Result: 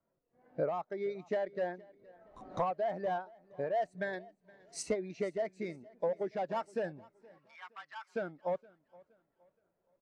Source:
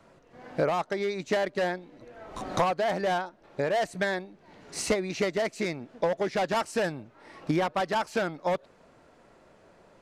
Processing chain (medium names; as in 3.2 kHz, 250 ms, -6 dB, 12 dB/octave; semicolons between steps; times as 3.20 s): 4.13–4.83 s: treble shelf 2.8 kHz +8.5 dB; 7.38–8.16 s: high-pass 1.1 kHz 24 dB/octave; feedback delay 469 ms, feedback 46%, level -16 dB; spectral contrast expander 1.5:1; trim -8.5 dB